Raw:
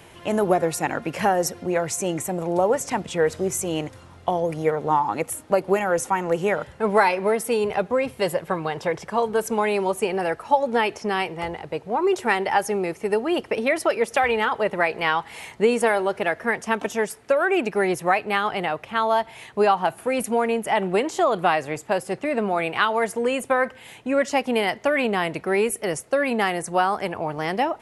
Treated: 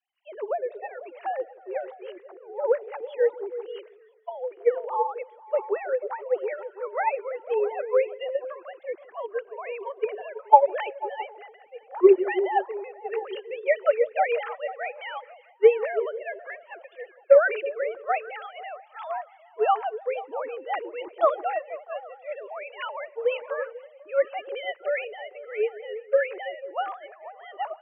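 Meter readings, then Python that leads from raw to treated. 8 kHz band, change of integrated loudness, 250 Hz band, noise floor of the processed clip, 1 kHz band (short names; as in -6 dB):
under -40 dB, -3.5 dB, -11.0 dB, -55 dBFS, -5.0 dB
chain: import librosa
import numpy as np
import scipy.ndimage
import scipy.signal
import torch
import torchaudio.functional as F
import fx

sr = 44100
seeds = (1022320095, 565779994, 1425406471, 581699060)

y = fx.sine_speech(x, sr)
y = fx.echo_stepped(y, sr, ms=164, hz=240.0, octaves=0.7, feedback_pct=70, wet_db=-4.0)
y = fx.band_widen(y, sr, depth_pct=70)
y = F.gain(torch.from_numpy(y), -7.0).numpy()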